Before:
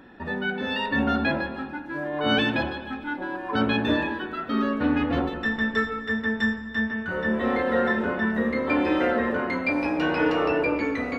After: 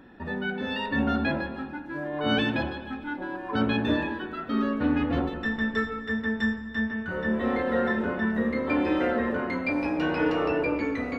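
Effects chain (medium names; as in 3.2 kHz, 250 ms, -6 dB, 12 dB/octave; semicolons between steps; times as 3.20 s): bass shelf 330 Hz +4.5 dB; trim -4 dB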